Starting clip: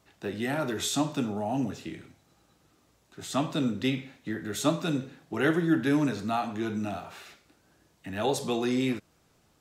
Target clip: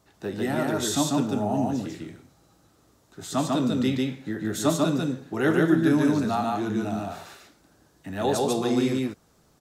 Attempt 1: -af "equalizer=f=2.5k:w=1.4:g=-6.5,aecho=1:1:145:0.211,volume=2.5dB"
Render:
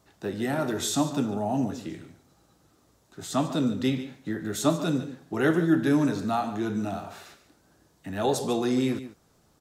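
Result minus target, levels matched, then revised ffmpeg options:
echo-to-direct -12 dB
-af "equalizer=f=2.5k:w=1.4:g=-6.5,aecho=1:1:145:0.841,volume=2.5dB"

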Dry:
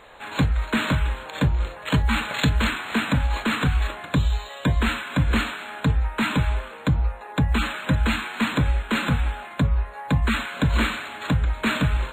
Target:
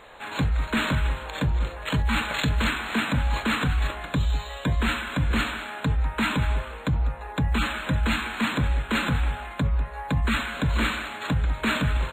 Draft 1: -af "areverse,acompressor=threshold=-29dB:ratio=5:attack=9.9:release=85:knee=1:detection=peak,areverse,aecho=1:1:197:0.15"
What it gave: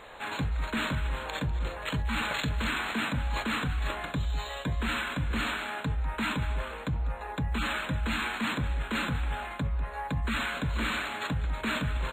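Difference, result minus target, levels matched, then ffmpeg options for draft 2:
compressor: peak gain reduction +7 dB
-af "areverse,acompressor=threshold=-20.5dB:ratio=5:attack=9.9:release=85:knee=1:detection=peak,areverse,aecho=1:1:197:0.15"

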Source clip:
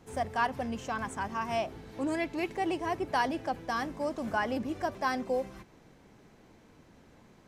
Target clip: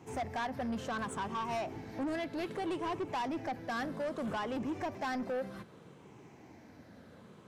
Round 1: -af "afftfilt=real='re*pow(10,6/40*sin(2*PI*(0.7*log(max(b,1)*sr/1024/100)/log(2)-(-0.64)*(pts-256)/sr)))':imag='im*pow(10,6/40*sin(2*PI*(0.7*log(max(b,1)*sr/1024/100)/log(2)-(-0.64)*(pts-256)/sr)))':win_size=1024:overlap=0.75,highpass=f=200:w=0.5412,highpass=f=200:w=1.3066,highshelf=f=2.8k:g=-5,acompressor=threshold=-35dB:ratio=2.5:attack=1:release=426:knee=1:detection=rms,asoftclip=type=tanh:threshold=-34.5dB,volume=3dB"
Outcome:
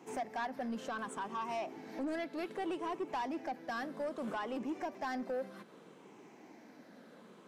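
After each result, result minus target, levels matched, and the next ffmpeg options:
125 Hz band -9.0 dB; compressor: peak gain reduction +4 dB
-af "afftfilt=real='re*pow(10,6/40*sin(2*PI*(0.7*log(max(b,1)*sr/1024/100)/log(2)-(-0.64)*(pts-256)/sr)))':imag='im*pow(10,6/40*sin(2*PI*(0.7*log(max(b,1)*sr/1024/100)/log(2)-(-0.64)*(pts-256)/sr)))':win_size=1024:overlap=0.75,highpass=f=80:w=0.5412,highpass=f=80:w=1.3066,highshelf=f=2.8k:g=-5,acompressor=threshold=-35dB:ratio=2.5:attack=1:release=426:knee=1:detection=rms,asoftclip=type=tanh:threshold=-34.5dB,volume=3dB"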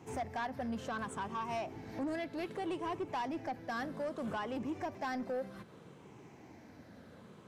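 compressor: peak gain reduction +4 dB
-af "afftfilt=real='re*pow(10,6/40*sin(2*PI*(0.7*log(max(b,1)*sr/1024/100)/log(2)-(-0.64)*(pts-256)/sr)))':imag='im*pow(10,6/40*sin(2*PI*(0.7*log(max(b,1)*sr/1024/100)/log(2)-(-0.64)*(pts-256)/sr)))':win_size=1024:overlap=0.75,highpass=f=80:w=0.5412,highpass=f=80:w=1.3066,highshelf=f=2.8k:g=-5,acompressor=threshold=-28.5dB:ratio=2.5:attack=1:release=426:knee=1:detection=rms,asoftclip=type=tanh:threshold=-34.5dB,volume=3dB"

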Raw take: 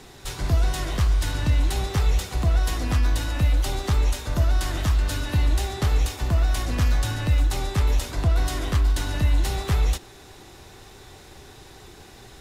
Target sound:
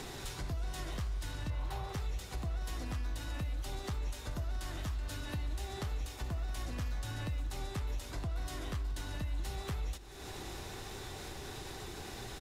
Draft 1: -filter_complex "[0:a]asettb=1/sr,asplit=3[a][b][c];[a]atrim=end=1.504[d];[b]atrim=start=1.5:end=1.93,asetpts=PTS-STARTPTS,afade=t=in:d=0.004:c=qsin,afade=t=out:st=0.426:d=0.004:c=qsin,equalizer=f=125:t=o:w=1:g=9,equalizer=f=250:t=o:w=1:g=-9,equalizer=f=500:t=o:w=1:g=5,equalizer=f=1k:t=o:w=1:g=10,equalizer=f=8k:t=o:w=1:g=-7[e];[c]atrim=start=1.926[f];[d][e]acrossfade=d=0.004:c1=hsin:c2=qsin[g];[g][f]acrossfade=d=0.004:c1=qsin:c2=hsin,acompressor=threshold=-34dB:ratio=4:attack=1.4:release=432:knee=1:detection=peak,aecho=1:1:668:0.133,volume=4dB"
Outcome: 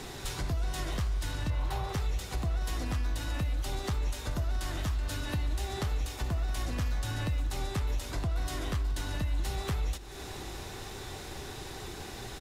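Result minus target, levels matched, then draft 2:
compressor: peak gain reduction -6 dB
-filter_complex "[0:a]asettb=1/sr,asplit=3[a][b][c];[a]atrim=end=1.504[d];[b]atrim=start=1.5:end=1.93,asetpts=PTS-STARTPTS,afade=t=in:d=0.004:c=qsin,afade=t=out:st=0.426:d=0.004:c=qsin,equalizer=f=125:t=o:w=1:g=9,equalizer=f=250:t=o:w=1:g=-9,equalizer=f=500:t=o:w=1:g=5,equalizer=f=1k:t=o:w=1:g=10,equalizer=f=8k:t=o:w=1:g=-7[e];[c]atrim=start=1.926[f];[d][e]acrossfade=d=0.004:c1=hsin:c2=qsin[g];[g][f]acrossfade=d=0.004:c1=qsin:c2=hsin,acompressor=threshold=-42dB:ratio=4:attack=1.4:release=432:knee=1:detection=peak,aecho=1:1:668:0.133,volume=4dB"

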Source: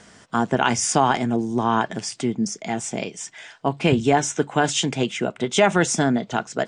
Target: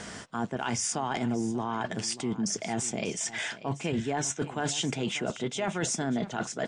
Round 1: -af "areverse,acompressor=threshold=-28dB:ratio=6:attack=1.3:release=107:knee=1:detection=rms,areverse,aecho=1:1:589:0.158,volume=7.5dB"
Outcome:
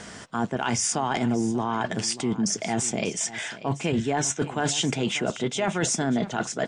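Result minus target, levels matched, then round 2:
compressor: peak gain reduction -5 dB
-af "areverse,acompressor=threshold=-34dB:ratio=6:attack=1.3:release=107:knee=1:detection=rms,areverse,aecho=1:1:589:0.158,volume=7.5dB"

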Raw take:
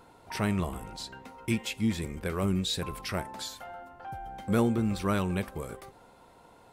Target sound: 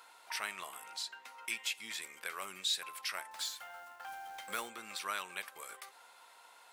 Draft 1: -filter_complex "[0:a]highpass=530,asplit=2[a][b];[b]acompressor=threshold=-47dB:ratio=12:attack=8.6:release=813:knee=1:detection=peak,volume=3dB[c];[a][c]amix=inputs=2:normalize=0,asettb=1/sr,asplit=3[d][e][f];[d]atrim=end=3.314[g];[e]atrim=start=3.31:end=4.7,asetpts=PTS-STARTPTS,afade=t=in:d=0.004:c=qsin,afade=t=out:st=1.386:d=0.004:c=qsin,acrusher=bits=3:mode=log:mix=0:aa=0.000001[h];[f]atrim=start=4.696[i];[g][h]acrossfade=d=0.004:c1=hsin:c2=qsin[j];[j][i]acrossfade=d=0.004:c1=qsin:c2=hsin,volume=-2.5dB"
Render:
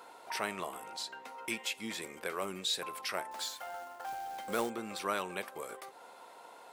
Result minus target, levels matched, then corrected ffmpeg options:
500 Hz band +11.0 dB
-filter_complex "[0:a]highpass=1.4k,asplit=2[a][b];[b]acompressor=threshold=-47dB:ratio=12:attack=8.6:release=813:knee=1:detection=peak,volume=3dB[c];[a][c]amix=inputs=2:normalize=0,asettb=1/sr,asplit=3[d][e][f];[d]atrim=end=3.314[g];[e]atrim=start=3.31:end=4.7,asetpts=PTS-STARTPTS,afade=t=in:d=0.004:c=qsin,afade=t=out:st=1.386:d=0.004:c=qsin,acrusher=bits=3:mode=log:mix=0:aa=0.000001[h];[f]atrim=start=4.696[i];[g][h]acrossfade=d=0.004:c1=hsin:c2=qsin[j];[j][i]acrossfade=d=0.004:c1=qsin:c2=hsin,volume=-2.5dB"

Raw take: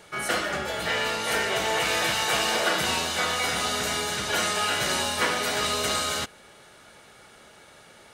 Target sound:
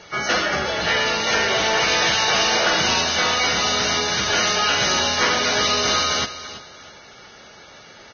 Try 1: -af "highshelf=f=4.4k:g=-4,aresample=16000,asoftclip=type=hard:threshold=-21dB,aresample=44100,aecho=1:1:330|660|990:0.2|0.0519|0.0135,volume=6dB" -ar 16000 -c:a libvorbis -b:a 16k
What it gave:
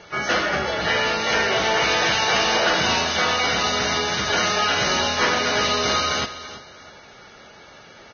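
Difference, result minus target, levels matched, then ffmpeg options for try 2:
8000 Hz band -3.0 dB
-af "highshelf=f=4.4k:g=3.5,aresample=16000,asoftclip=type=hard:threshold=-21dB,aresample=44100,aecho=1:1:330|660|990:0.2|0.0519|0.0135,volume=6dB" -ar 16000 -c:a libvorbis -b:a 16k

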